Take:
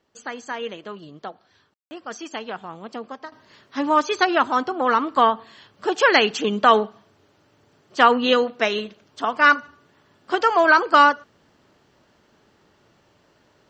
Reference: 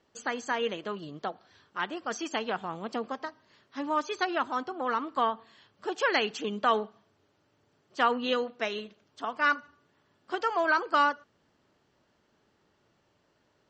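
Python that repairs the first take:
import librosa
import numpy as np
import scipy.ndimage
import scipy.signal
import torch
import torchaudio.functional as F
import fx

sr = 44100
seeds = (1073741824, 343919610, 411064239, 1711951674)

y = fx.fix_ambience(x, sr, seeds[0], print_start_s=13.0, print_end_s=13.5, start_s=1.74, end_s=1.91)
y = fx.fix_level(y, sr, at_s=3.32, step_db=-10.5)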